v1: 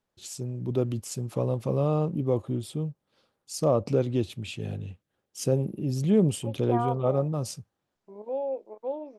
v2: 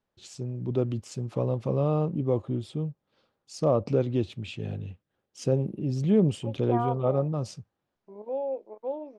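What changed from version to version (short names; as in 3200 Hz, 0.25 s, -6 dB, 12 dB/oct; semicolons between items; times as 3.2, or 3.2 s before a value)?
master: add air absorption 97 m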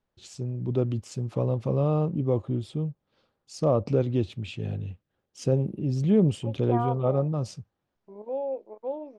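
master: add low shelf 81 Hz +8 dB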